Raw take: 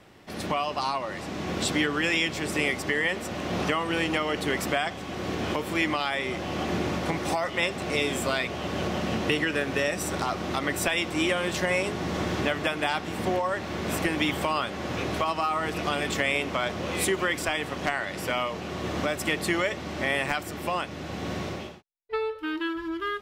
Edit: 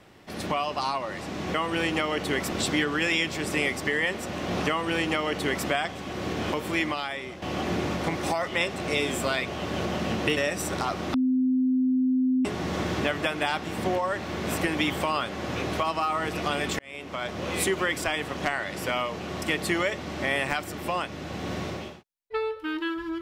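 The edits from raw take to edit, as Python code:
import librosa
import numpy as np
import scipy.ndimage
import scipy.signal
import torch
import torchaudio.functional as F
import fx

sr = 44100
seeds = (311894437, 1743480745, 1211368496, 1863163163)

y = fx.edit(x, sr, fx.duplicate(start_s=3.71, length_s=0.98, to_s=1.54),
    fx.fade_out_to(start_s=5.72, length_s=0.72, floor_db=-10.5),
    fx.cut(start_s=9.39, length_s=0.39),
    fx.bleep(start_s=10.55, length_s=1.31, hz=257.0, db=-20.0),
    fx.fade_in_span(start_s=16.2, length_s=0.69),
    fx.cut(start_s=18.83, length_s=0.38), tone=tone)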